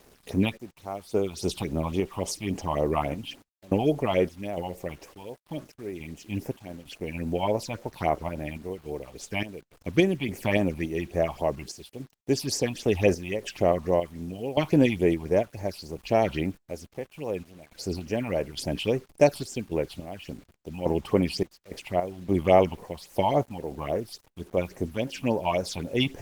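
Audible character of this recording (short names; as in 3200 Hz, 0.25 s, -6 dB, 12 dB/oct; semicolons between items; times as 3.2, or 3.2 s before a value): random-step tremolo, depth 95%; phasing stages 6, 3.6 Hz, lowest notch 430–4000 Hz; a quantiser's noise floor 10-bit, dither none; Opus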